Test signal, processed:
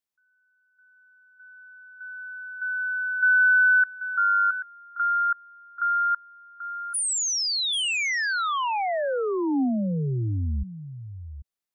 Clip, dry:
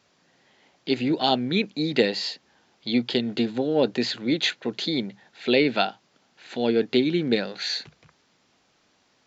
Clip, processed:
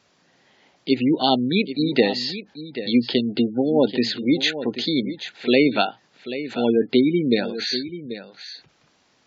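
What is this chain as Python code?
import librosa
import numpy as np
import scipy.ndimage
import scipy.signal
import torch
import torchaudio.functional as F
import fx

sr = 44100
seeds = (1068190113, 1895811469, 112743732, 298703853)

y = x + 10.0 ** (-12.0 / 20.0) * np.pad(x, (int(786 * sr / 1000.0), 0))[:len(x)]
y = fx.spec_gate(y, sr, threshold_db=-25, keep='strong')
y = fx.dynamic_eq(y, sr, hz=270.0, q=3.9, threshold_db=-37.0, ratio=4.0, max_db=4)
y = y * librosa.db_to_amplitude(2.5)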